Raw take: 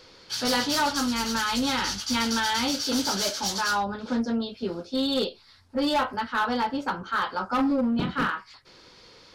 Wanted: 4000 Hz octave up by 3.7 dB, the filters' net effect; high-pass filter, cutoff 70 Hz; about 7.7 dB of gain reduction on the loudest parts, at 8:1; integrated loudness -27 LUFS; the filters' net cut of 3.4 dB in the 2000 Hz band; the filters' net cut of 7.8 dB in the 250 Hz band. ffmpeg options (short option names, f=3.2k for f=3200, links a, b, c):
-af "highpass=70,equalizer=f=250:t=o:g=-8.5,equalizer=f=2k:t=o:g=-6,equalizer=f=4k:t=o:g=6,acompressor=threshold=-29dB:ratio=8,volume=5dB"